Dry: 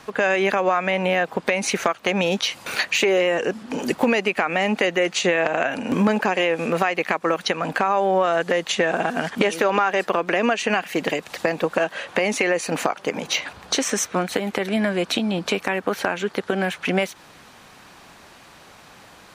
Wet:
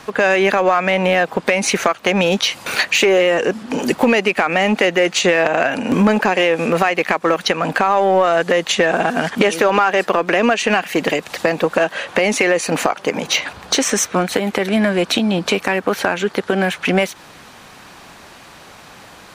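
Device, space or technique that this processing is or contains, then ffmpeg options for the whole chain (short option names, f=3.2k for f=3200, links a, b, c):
parallel distortion: -filter_complex "[0:a]asplit=2[a][b];[b]asoftclip=type=hard:threshold=-18.5dB,volume=-7dB[c];[a][c]amix=inputs=2:normalize=0,volume=3dB"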